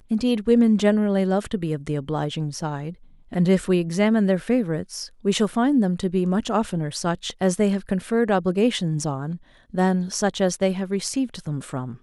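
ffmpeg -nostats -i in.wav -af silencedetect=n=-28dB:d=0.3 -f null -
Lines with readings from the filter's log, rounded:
silence_start: 2.90
silence_end: 3.33 | silence_duration: 0.43
silence_start: 9.36
silence_end: 9.74 | silence_duration: 0.39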